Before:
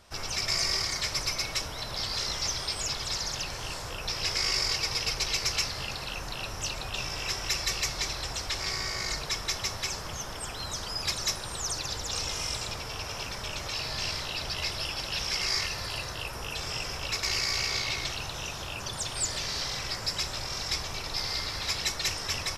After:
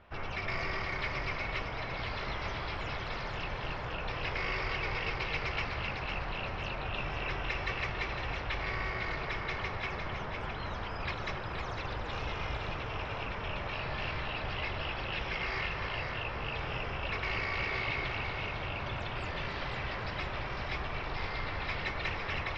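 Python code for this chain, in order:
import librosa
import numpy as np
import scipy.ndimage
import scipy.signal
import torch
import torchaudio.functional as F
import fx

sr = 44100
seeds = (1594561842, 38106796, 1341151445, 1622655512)

p1 = scipy.signal.sosfilt(scipy.signal.butter(4, 2700.0, 'lowpass', fs=sr, output='sos'), x)
y = p1 + fx.echo_split(p1, sr, split_hz=1800.0, low_ms=276, high_ms=505, feedback_pct=52, wet_db=-6, dry=0)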